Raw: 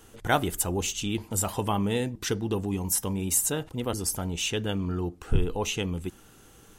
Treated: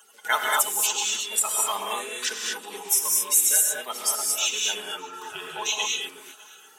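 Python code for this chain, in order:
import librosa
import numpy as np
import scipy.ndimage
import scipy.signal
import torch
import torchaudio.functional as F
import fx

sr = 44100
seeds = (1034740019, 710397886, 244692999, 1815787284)

p1 = fx.spec_quant(x, sr, step_db=30)
p2 = scipy.signal.sosfilt(scipy.signal.butter(2, 1200.0, 'highpass', fs=sr, output='sos'), p1)
p3 = p2 + 0.63 * np.pad(p2, (int(4.7 * sr / 1000.0), 0))[:len(p2)]
p4 = p3 + fx.echo_feedback(p3, sr, ms=604, feedback_pct=43, wet_db=-23.5, dry=0)
p5 = fx.rev_gated(p4, sr, seeds[0], gate_ms=260, shape='rising', drr_db=-1.0)
y = p5 * 10.0 ** (4.0 / 20.0)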